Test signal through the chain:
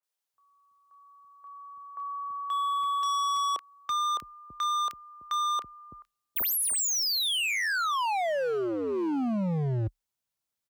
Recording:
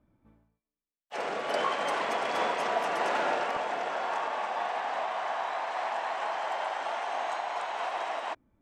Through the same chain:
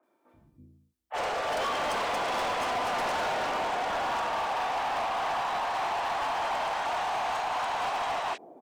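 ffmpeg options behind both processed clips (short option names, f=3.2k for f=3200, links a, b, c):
-filter_complex "[0:a]lowshelf=f=150:g=3.5,asplit=2[a][b];[b]alimiter=level_in=1dB:limit=-24dB:level=0:latency=1,volume=-1dB,volume=1.5dB[c];[a][c]amix=inputs=2:normalize=0,afreqshift=31,acrossover=split=380|2100[d][e][f];[f]adelay=30[g];[d]adelay=330[h];[h][e][g]amix=inputs=3:normalize=0,volume=27dB,asoftclip=hard,volume=-27dB"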